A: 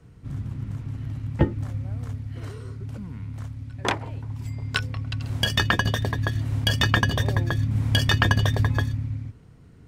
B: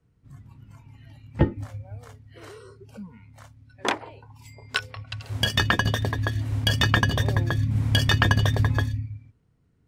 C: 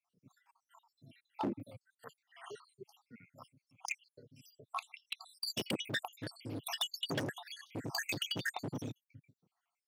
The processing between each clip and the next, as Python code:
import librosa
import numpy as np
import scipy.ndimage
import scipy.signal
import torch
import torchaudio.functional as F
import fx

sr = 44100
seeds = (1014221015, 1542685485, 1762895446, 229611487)

y1 = fx.noise_reduce_blind(x, sr, reduce_db=16)
y2 = fx.spec_dropout(y1, sr, seeds[0], share_pct=78)
y2 = np.clip(y2, -10.0 ** (-28.0 / 20.0), 10.0 ** (-28.0 / 20.0))
y2 = scipy.signal.sosfilt(scipy.signal.butter(4, 160.0, 'highpass', fs=sr, output='sos'), y2)
y2 = y2 * librosa.db_to_amplitude(-1.0)